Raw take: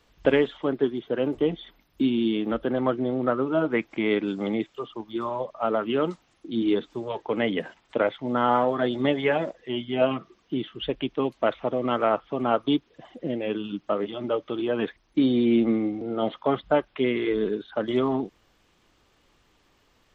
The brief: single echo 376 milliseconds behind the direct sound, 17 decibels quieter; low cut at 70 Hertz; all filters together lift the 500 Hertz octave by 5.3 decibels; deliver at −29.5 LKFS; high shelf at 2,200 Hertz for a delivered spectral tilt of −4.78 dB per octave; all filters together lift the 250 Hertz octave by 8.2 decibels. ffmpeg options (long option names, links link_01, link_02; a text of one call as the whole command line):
ffmpeg -i in.wav -af "highpass=70,equalizer=frequency=250:width_type=o:gain=8.5,equalizer=frequency=500:width_type=o:gain=3.5,highshelf=frequency=2200:gain=7.5,aecho=1:1:376:0.141,volume=-9.5dB" out.wav